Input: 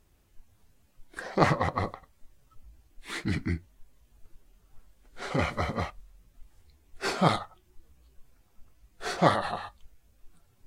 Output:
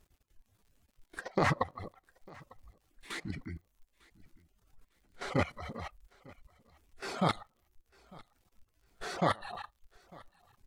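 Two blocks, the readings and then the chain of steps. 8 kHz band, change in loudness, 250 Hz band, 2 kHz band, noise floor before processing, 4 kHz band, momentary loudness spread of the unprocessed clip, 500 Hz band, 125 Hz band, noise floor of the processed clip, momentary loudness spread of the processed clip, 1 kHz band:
-6.0 dB, -6.0 dB, -6.0 dB, -5.0 dB, -65 dBFS, -6.0 dB, 15 LU, -6.5 dB, -6.5 dB, -76 dBFS, 19 LU, -6.5 dB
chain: level quantiser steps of 13 dB; reverb removal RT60 0.83 s; crackle 55/s -58 dBFS; on a send: feedback echo 0.9 s, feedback 24%, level -24 dB

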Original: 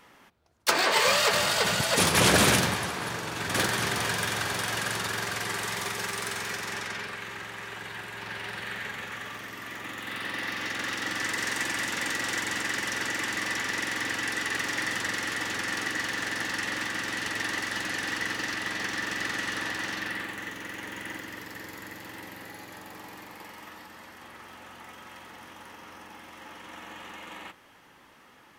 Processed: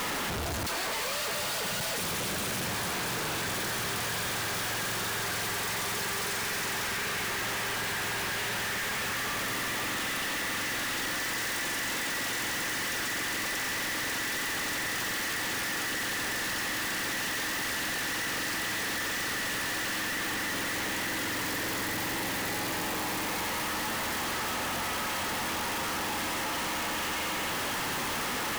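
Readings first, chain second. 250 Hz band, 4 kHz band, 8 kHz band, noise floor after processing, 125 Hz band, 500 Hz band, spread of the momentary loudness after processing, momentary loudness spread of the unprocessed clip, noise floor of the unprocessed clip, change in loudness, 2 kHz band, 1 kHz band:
-1.5 dB, -1.0 dB, +0.5 dB, -32 dBFS, -3.5 dB, -3.0 dB, 1 LU, 22 LU, -56 dBFS, -2.0 dB, -1.5 dB, -1.0 dB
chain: infinite clipping; gain -1 dB

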